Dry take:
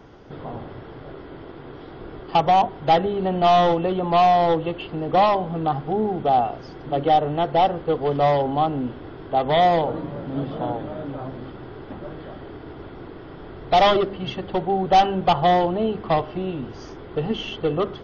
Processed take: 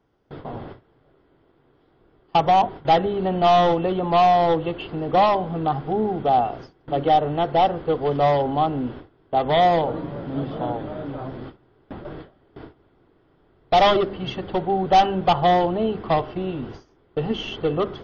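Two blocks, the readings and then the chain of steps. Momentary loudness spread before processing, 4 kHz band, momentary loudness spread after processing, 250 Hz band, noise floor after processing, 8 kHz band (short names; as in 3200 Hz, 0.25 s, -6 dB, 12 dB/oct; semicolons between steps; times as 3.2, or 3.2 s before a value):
21 LU, 0.0 dB, 16 LU, 0.0 dB, -61 dBFS, n/a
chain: gate with hold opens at -26 dBFS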